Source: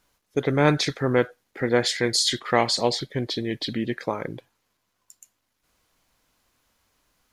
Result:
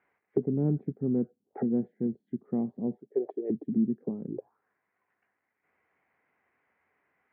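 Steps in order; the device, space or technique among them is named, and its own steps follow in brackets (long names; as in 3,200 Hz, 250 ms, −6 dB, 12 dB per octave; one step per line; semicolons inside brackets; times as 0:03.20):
0:02.95–0:03.50: high-pass filter 520 Hz 12 dB per octave
envelope filter bass rig (envelope-controlled low-pass 220–2,100 Hz down, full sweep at −26 dBFS; loudspeaker in its box 90–2,400 Hz, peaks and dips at 110 Hz −7 dB, 410 Hz +9 dB, 760 Hz +7 dB)
level −8 dB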